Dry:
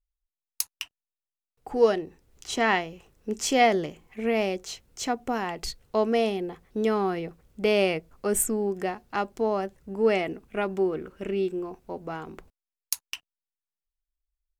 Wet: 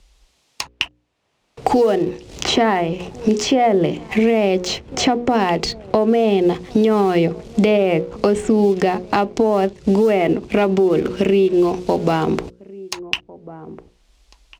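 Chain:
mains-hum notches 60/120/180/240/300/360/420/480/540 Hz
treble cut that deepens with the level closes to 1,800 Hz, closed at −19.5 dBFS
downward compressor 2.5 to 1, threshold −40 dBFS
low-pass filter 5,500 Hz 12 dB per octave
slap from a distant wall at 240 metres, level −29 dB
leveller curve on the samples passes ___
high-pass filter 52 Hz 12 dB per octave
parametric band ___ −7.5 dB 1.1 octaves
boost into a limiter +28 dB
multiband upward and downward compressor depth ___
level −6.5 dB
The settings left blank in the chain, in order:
1, 1,500 Hz, 70%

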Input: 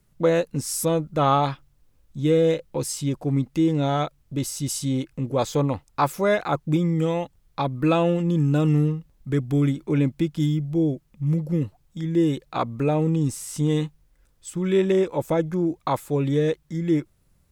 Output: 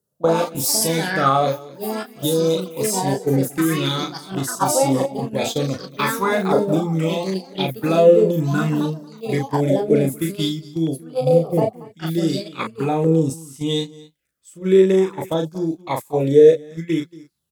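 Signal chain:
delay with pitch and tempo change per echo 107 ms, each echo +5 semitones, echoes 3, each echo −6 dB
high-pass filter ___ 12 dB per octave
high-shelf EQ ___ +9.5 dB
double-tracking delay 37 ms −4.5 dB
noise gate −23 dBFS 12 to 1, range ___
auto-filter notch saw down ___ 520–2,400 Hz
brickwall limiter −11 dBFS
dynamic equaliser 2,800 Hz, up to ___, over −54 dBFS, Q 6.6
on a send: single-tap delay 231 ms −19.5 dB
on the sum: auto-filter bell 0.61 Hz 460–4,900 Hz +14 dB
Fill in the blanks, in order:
120 Hz, 6,700 Hz, −14 dB, 0.46 Hz, −4 dB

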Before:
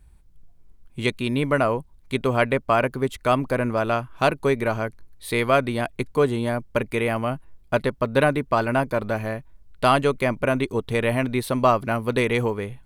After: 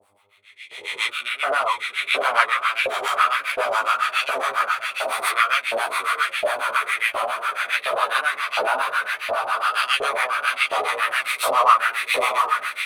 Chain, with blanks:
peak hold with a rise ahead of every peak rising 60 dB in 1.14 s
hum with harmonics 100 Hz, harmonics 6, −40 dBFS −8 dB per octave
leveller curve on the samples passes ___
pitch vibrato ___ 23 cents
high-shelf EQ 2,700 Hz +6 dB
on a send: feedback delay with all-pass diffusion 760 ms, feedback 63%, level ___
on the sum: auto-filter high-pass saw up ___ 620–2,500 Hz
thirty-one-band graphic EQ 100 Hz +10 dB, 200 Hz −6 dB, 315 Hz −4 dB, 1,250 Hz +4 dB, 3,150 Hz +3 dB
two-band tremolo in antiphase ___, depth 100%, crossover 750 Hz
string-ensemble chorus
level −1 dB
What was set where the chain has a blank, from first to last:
1, 0.67 Hz, −5 dB, 1.4 Hz, 7.3 Hz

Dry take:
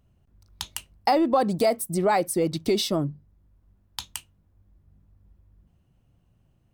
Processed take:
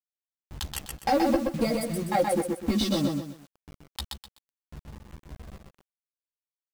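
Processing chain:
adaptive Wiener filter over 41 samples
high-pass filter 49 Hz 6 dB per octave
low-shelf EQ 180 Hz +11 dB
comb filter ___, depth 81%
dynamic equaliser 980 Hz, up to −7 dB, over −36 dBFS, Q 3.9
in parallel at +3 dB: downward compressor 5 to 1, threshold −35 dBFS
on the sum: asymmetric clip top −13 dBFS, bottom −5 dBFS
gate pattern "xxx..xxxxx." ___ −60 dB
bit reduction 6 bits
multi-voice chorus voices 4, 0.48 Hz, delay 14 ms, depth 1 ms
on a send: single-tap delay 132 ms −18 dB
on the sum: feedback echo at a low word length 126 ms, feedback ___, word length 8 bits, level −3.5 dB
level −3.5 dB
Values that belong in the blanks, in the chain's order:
3.7 ms, 156 BPM, 35%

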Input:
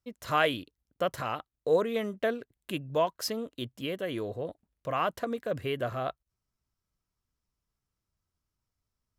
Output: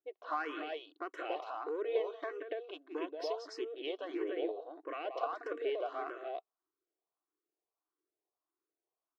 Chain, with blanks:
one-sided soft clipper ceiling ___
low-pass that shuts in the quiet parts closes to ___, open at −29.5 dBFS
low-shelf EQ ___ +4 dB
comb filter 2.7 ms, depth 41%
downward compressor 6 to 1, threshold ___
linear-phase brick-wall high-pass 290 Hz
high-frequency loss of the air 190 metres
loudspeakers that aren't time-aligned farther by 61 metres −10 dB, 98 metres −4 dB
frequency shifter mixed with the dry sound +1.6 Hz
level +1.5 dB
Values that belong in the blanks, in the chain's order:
−20 dBFS, 1,000 Hz, 390 Hz, −32 dBFS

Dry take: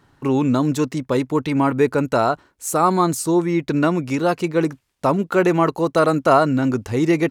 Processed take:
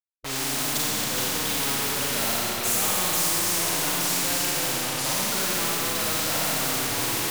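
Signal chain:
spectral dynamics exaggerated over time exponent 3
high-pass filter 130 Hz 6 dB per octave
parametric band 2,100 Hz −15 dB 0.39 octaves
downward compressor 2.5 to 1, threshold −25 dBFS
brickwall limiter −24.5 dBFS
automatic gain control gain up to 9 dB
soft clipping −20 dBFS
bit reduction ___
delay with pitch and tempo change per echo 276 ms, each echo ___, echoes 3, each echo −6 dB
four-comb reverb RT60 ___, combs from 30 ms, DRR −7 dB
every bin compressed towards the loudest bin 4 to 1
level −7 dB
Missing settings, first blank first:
7 bits, −3 semitones, 1.4 s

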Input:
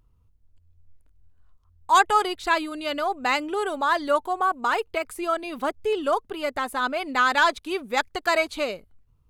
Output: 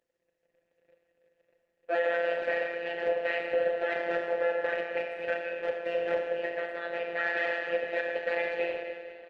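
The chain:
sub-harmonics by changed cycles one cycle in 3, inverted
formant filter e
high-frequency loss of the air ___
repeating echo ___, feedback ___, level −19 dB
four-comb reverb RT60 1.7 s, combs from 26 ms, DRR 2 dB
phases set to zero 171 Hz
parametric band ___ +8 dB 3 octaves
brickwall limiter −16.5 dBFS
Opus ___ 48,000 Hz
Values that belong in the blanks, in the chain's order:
66 metres, 479 ms, 45%, 1,100 Hz, 16 kbit/s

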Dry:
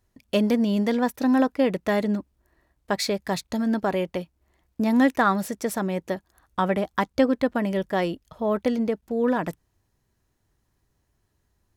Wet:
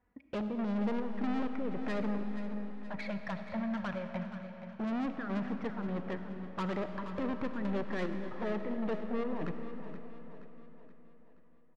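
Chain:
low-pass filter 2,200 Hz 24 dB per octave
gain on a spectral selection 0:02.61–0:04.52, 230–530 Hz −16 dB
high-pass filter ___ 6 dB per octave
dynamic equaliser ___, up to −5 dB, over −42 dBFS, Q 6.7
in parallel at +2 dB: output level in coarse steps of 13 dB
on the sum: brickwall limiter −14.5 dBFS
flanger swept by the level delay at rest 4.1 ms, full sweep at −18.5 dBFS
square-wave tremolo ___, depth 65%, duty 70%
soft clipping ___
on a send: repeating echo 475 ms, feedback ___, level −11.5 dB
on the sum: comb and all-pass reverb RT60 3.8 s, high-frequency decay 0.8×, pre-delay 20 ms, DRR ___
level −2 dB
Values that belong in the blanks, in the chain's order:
130 Hz, 740 Hz, 1.7 Hz, −30.5 dBFS, 48%, 7 dB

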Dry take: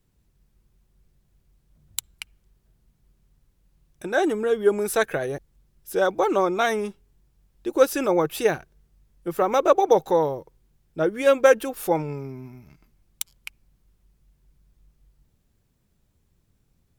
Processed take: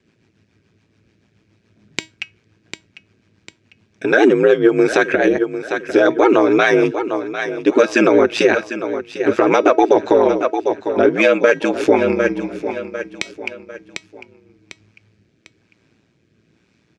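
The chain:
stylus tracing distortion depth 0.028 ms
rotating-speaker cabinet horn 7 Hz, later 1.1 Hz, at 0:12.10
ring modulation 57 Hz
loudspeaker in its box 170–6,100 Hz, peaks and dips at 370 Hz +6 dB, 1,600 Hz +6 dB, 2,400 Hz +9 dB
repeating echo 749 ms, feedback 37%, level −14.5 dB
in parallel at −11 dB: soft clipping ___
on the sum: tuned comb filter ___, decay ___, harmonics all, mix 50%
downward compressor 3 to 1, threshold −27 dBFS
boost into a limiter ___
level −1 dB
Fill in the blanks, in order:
−16 dBFS, 320 Hz, 0.19 s, +20.5 dB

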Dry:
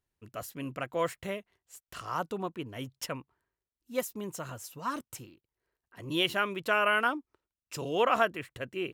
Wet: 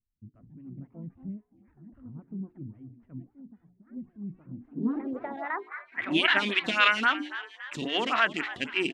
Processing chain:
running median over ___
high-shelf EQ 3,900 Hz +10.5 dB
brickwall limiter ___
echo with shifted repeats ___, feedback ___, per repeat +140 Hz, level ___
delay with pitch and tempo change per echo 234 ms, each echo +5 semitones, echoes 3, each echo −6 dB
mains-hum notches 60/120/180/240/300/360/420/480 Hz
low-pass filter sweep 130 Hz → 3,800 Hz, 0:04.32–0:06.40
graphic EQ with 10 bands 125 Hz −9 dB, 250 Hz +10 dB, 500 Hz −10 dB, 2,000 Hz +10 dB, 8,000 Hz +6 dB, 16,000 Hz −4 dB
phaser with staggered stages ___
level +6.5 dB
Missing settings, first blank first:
9 samples, −21 dBFS, 285 ms, 45%, −16.5 dB, 3.7 Hz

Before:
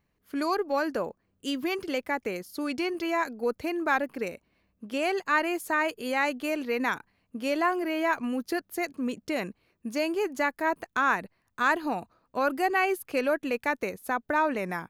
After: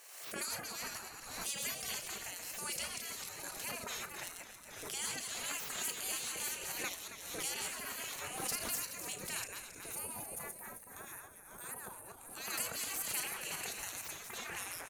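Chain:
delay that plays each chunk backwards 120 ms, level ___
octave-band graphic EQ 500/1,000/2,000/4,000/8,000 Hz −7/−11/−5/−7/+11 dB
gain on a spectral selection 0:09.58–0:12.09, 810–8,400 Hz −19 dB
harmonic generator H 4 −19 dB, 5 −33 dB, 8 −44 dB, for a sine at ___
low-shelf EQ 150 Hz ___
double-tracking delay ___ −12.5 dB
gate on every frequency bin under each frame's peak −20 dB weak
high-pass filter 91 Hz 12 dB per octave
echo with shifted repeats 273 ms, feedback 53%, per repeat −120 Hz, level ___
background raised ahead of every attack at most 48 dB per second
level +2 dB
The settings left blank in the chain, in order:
−3 dB, −18.5 dBFS, −6 dB, 35 ms, −11 dB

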